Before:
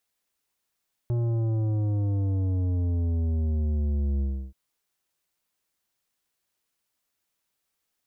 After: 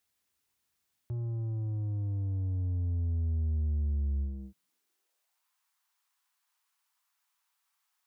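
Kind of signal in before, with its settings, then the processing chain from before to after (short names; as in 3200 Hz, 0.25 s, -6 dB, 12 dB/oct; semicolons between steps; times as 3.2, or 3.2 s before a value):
sub drop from 120 Hz, over 3.43 s, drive 10.5 dB, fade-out 0.32 s, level -24 dB
bell 560 Hz -4.5 dB 0.79 oct; limiter -35.5 dBFS; high-pass sweep 73 Hz -> 980 Hz, 4.2–5.45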